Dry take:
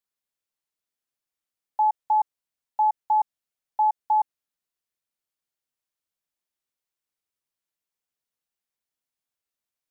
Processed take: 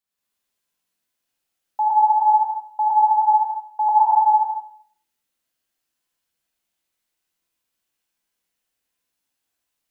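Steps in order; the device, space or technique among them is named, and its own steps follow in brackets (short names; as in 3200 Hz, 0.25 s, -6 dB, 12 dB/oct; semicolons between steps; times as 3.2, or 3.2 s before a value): 3–3.89 elliptic high-pass 770 Hz; non-linear reverb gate 0.25 s rising, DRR -5.5 dB; bathroom (reverb RT60 0.55 s, pre-delay 57 ms, DRR -1 dB)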